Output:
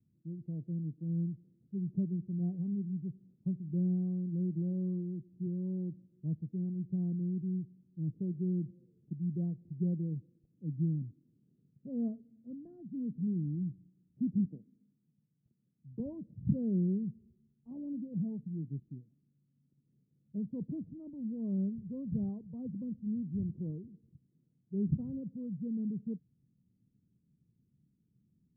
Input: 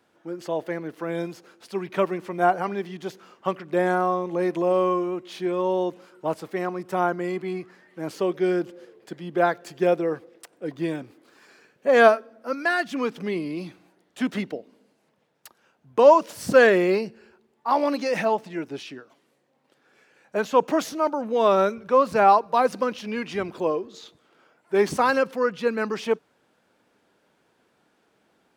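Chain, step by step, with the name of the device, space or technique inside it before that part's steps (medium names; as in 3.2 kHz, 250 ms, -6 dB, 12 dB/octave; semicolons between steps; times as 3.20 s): 14.45–16.00 s: frequency weighting D; the neighbour's flat through the wall (low-pass 180 Hz 24 dB/octave; peaking EQ 130 Hz +4.5 dB 0.77 oct); trim +4 dB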